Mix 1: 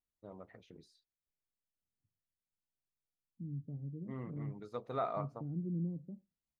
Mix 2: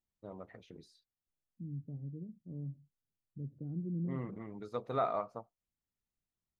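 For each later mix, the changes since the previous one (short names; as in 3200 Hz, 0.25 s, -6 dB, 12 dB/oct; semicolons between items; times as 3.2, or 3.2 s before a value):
first voice +3.5 dB; second voice: entry -1.80 s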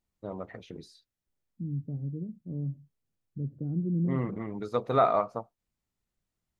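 first voice +9.5 dB; second voice +8.5 dB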